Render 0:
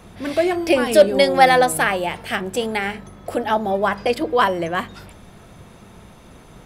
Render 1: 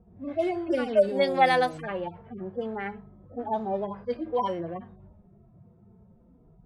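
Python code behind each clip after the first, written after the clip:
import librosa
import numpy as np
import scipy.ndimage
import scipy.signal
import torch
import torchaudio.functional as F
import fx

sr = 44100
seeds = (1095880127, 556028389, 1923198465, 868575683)

y = fx.hpss_only(x, sr, part='harmonic')
y = scipy.signal.sosfilt(scipy.signal.butter(2, 10000.0, 'lowpass', fs=sr, output='sos'), y)
y = fx.env_lowpass(y, sr, base_hz=430.0, full_db=-13.0)
y = F.gain(torch.from_numpy(y), -8.0).numpy()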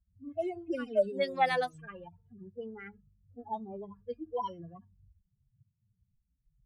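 y = fx.bin_expand(x, sr, power=2.0)
y = F.gain(torch.from_numpy(y), -4.5).numpy()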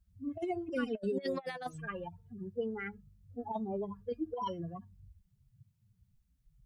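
y = fx.over_compress(x, sr, threshold_db=-36.0, ratio=-0.5)
y = F.gain(torch.from_numpy(y), 1.5).numpy()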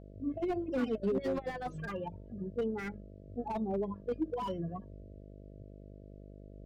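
y = fx.dmg_buzz(x, sr, base_hz=50.0, harmonics=13, level_db=-54.0, tilt_db=-4, odd_only=False)
y = scipy.signal.sosfilt(scipy.signal.butter(2, 4300.0, 'lowpass', fs=sr, output='sos'), y)
y = fx.slew_limit(y, sr, full_power_hz=12.0)
y = F.gain(torch.from_numpy(y), 3.0).numpy()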